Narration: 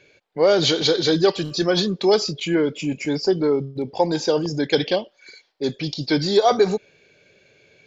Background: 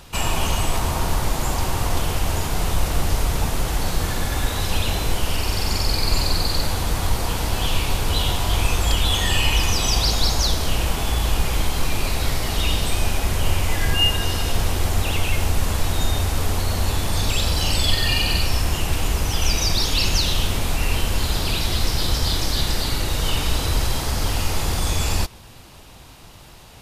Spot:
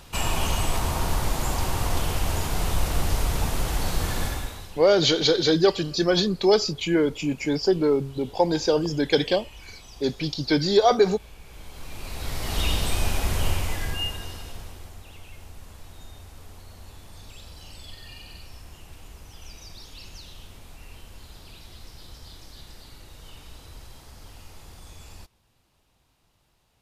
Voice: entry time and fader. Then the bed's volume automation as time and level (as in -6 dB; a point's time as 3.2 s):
4.40 s, -1.5 dB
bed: 4.26 s -3.5 dB
4.88 s -26.5 dB
11.39 s -26.5 dB
12.59 s -3.5 dB
13.44 s -3.5 dB
15.01 s -23.5 dB